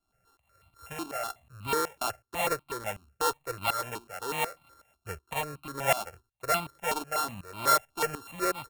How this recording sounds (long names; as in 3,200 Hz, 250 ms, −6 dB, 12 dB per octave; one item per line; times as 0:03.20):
a buzz of ramps at a fixed pitch in blocks of 32 samples
tremolo saw up 2.7 Hz, depth 85%
notches that jump at a steady rate 8.1 Hz 510–1,700 Hz